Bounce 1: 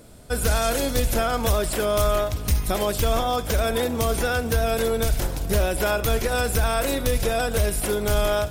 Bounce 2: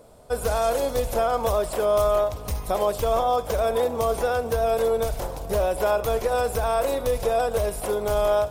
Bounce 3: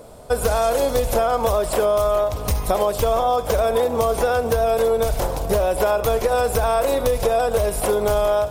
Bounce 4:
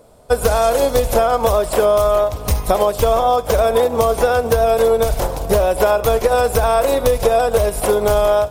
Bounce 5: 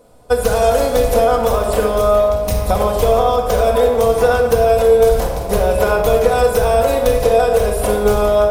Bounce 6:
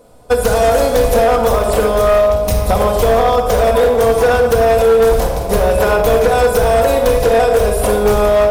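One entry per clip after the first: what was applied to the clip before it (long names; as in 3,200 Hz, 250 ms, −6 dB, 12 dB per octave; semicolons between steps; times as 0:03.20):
flat-topped bell 710 Hz +10.5 dB; level −7.5 dB
downward compressor, threshold −24 dBFS, peak gain reduction 7.5 dB; level +8.5 dB
expander for the loud parts 1.5 to 1, over −38 dBFS; level +5.5 dB
rectangular room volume 1,600 cubic metres, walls mixed, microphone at 1.9 metres; level −3 dB
hard clipping −10 dBFS, distortion −14 dB; level +3 dB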